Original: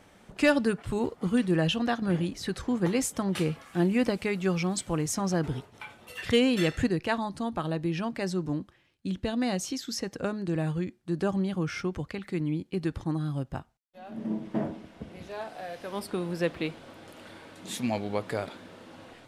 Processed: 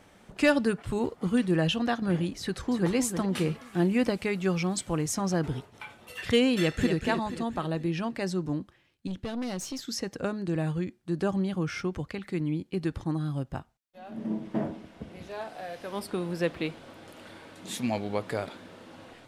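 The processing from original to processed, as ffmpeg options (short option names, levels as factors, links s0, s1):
-filter_complex "[0:a]asplit=2[s0][s1];[s1]afade=t=in:st=2.4:d=0.01,afade=t=out:st=2.94:d=0.01,aecho=0:1:310|620|930|1240|1550:0.398107|0.159243|0.0636971|0.0254789|0.0101915[s2];[s0][s2]amix=inputs=2:normalize=0,asplit=2[s3][s4];[s4]afade=t=in:st=6.54:d=0.01,afade=t=out:st=6.95:d=0.01,aecho=0:1:240|480|720|960|1200|1440:0.446684|0.223342|0.111671|0.0558354|0.0279177|0.0139589[s5];[s3][s5]amix=inputs=2:normalize=0,asettb=1/sr,asplit=3[s6][s7][s8];[s6]atrim=end=9.074[s9];[s7]atrim=start=9.07:end=9.88,asetpts=PTS-STARTPTS,afade=t=in:d=0.004:c=qsin,afade=t=out:st=0.806:d=0.004:c=qsin,aeval=exprs='(tanh(28.2*val(0)+0.4)-tanh(0.4))/28.2':c=same[s10];[s8]atrim=start=9.876[s11];[s9][s10]acrossfade=d=0.004:c1=hsin:c2=qsin[s12];[s12][s11]acrossfade=d=0.004:c1=qsin:c2=hsin"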